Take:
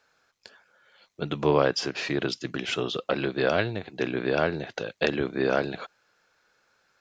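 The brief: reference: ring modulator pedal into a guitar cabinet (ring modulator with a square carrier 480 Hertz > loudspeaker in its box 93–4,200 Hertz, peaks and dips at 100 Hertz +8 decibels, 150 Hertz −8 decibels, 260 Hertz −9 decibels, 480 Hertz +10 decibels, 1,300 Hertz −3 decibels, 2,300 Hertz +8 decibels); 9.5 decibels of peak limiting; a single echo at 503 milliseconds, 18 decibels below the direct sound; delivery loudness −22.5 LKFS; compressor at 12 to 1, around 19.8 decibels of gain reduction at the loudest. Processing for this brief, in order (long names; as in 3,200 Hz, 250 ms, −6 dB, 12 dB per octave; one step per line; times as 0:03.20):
downward compressor 12 to 1, threshold −37 dBFS
brickwall limiter −31 dBFS
single-tap delay 503 ms −18 dB
ring modulator with a square carrier 480 Hz
loudspeaker in its box 93–4,200 Hz, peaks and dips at 100 Hz +8 dB, 150 Hz −8 dB, 260 Hz −9 dB, 480 Hz +10 dB, 1,300 Hz −3 dB, 2,300 Hz +8 dB
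level +20.5 dB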